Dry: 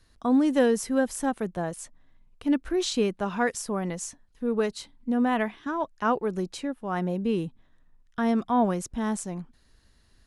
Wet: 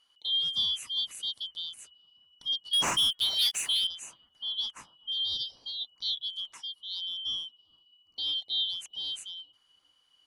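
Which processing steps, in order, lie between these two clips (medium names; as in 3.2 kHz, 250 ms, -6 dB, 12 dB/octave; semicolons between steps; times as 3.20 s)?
four frequency bands reordered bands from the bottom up 3412; 2.73–3.87 s: waveshaping leveller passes 3; 6.52–7.03 s: high-pass 1.1 kHz 6 dB/octave; bucket-brigade echo 399 ms, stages 4096, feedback 64%, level -20.5 dB; trim -8 dB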